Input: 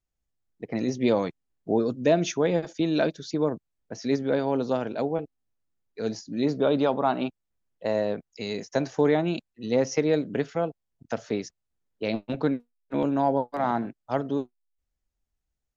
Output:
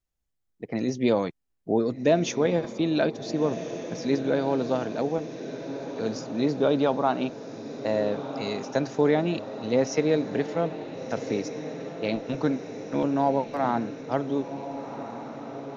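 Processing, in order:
feedback delay with all-pass diffusion 1,459 ms, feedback 63%, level −11 dB

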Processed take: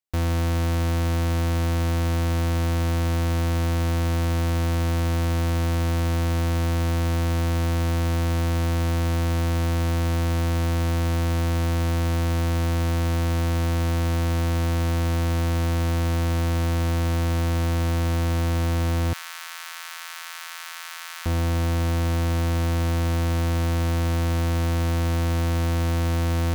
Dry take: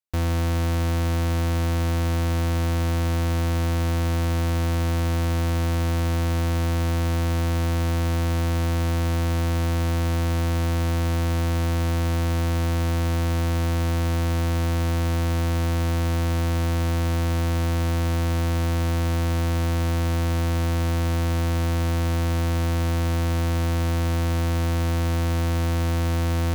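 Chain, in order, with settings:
0:19.13–0:21.26: high-pass filter 1,200 Hz 24 dB per octave

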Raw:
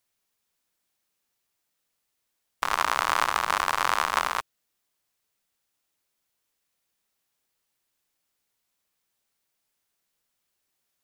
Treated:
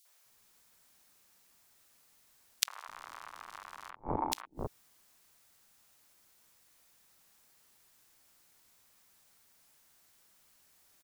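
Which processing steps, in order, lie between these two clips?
0:03.90–0:04.32: formant resonators in series u
three-band delay without the direct sound highs, mids, lows 50/260 ms, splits 430/3,000 Hz
downward compressor 8 to 1, threshold −27 dBFS, peak gain reduction 9 dB
gate with flip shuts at −22 dBFS, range −28 dB
level +12.5 dB

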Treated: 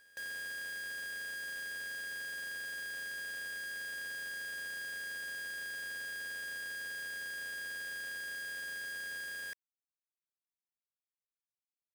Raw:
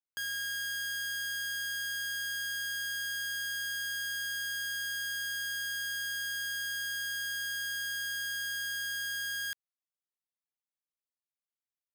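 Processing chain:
sub-octave generator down 2 octaves, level 0 dB
formant resonators in series e
parametric band 70 Hz −14.5 dB 1.1 octaves
log-companded quantiser 4 bits
on a send: backwards echo 292 ms −20 dB
on the sum: level +8.5 dB

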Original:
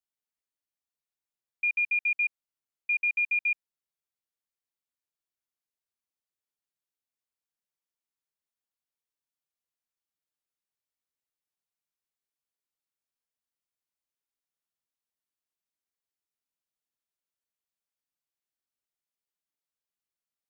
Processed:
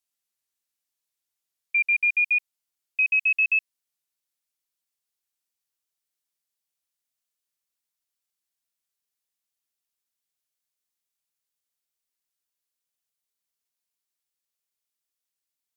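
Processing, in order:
gliding playback speed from 89% → 171%
high-shelf EQ 2,400 Hz +10 dB

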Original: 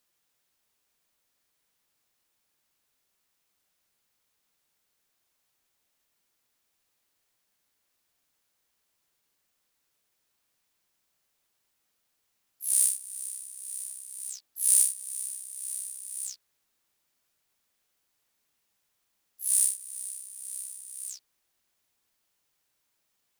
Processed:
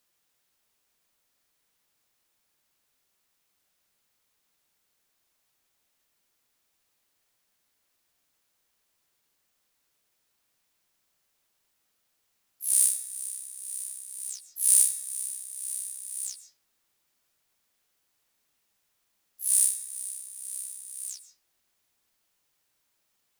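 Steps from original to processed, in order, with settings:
comb and all-pass reverb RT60 0.43 s, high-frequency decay 0.65×, pre-delay 95 ms, DRR 13.5 dB
level +1.5 dB

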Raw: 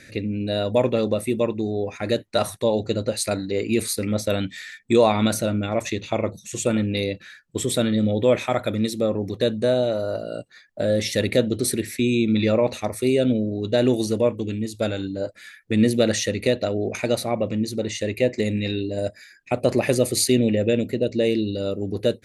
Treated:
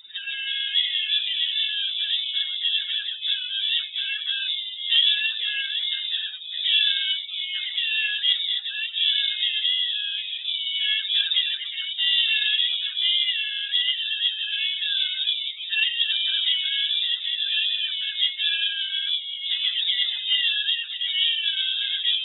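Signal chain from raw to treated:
frequency axis turned over on the octave scale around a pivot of 460 Hz
harmonic generator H 2 −24 dB, 3 −26 dB, 8 −44 dB, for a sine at −6.5 dBFS
delay with pitch and tempo change per echo 100 ms, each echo −5 semitones, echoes 3
voice inversion scrambler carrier 3,700 Hz
level −2 dB

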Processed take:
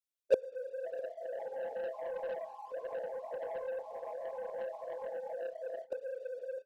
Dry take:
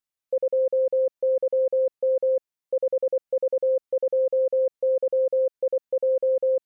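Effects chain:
random phases in long frames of 50 ms
phaser with its sweep stopped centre 400 Hz, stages 4
flutter between parallel walls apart 5.6 metres, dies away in 0.22 s
dynamic equaliser 460 Hz, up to +5 dB, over −28 dBFS, Q 4
delay with pitch and tempo change per echo 590 ms, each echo +4 semitones, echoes 3, each echo −6 dB
automatic gain control gain up to 8 dB
0:01.36–0:03.48: parametric band 260 Hz +8 dB 1 octave
leveller curve on the samples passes 2
gate with flip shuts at −11 dBFS, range −29 dB
single-tap delay 652 ms −22 dB
level −2.5 dB

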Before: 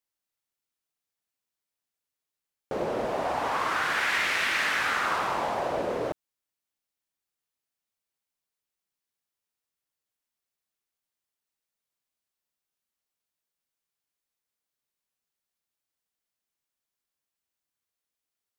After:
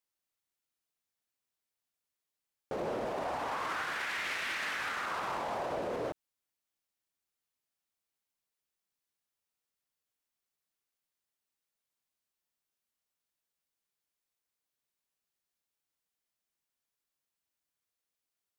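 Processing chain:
brickwall limiter −26 dBFS, peak gain reduction 10.5 dB
level −1.5 dB

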